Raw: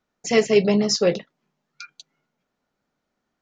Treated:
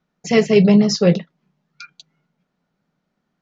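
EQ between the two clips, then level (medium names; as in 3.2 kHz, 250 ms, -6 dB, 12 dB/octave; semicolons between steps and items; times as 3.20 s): low-pass 5.8 kHz 12 dB/octave; peaking EQ 170 Hz +13.5 dB 0.51 oct; +2.0 dB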